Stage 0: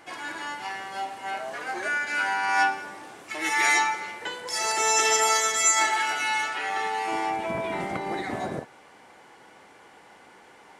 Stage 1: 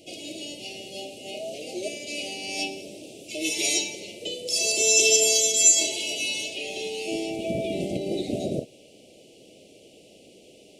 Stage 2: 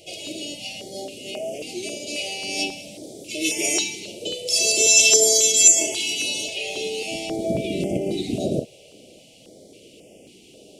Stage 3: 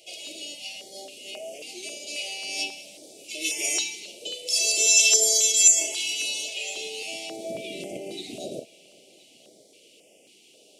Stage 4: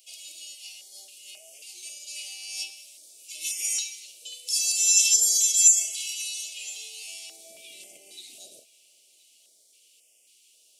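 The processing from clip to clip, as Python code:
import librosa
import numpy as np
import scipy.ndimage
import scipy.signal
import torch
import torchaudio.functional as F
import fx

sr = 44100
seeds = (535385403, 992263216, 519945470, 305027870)

y1 = scipy.signal.sosfilt(scipy.signal.cheby1(4, 1.0, [630.0, 2600.0], 'bandstop', fs=sr, output='sos'), x)
y1 = F.gain(torch.from_numpy(y1), 5.5).numpy()
y2 = fx.filter_held_notch(y1, sr, hz=3.7, low_hz=260.0, high_hz=4000.0)
y2 = F.gain(torch.from_numpy(y2), 5.0).numpy()
y3 = fx.highpass(y2, sr, hz=950.0, slope=6)
y3 = y3 + 10.0 ** (-24.0 / 20.0) * np.pad(y3, (int(1019 * sr / 1000.0), 0))[:len(y3)]
y3 = F.gain(torch.from_numpy(y3), -3.0).numpy()
y4 = scipy.signal.lfilter([1.0, -0.97], [1.0], y3)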